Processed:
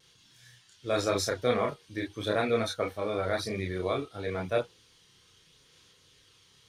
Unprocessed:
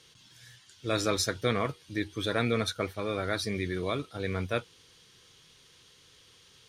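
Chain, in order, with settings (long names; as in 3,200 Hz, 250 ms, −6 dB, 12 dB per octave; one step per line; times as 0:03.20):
dynamic equaliser 670 Hz, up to +8 dB, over −44 dBFS, Q 0.99
pitch vibrato 0.91 Hz 22 cents
multi-voice chorus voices 2, 0.43 Hz, delay 30 ms, depth 2.8 ms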